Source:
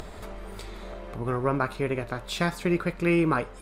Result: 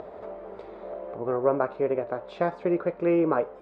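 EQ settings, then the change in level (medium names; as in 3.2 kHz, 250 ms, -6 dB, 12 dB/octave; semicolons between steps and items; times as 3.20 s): band-pass filter 560 Hz, Q 1.9; distance through air 93 m; +7.5 dB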